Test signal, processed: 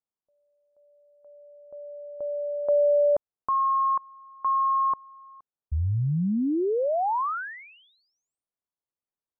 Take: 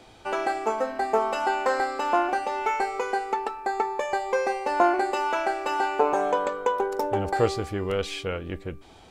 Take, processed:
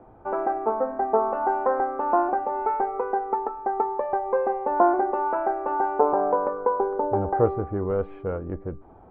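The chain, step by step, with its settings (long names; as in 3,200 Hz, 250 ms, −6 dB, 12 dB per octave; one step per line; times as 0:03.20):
low-pass filter 1,200 Hz 24 dB per octave
level +2 dB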